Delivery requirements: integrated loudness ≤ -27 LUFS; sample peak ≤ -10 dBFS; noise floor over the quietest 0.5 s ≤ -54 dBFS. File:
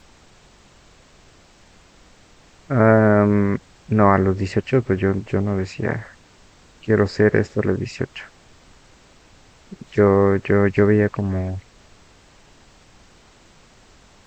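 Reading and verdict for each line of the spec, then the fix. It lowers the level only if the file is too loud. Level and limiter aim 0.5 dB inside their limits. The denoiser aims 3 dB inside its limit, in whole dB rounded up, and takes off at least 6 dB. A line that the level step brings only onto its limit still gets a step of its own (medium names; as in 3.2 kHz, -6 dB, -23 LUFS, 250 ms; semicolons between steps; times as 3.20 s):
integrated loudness -19.0 LUFS: fail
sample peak -1.5 dBFS: fail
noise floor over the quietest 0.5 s -51 dBFS: fail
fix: trim -8.5 dB; peak limiter -10.5 dBFS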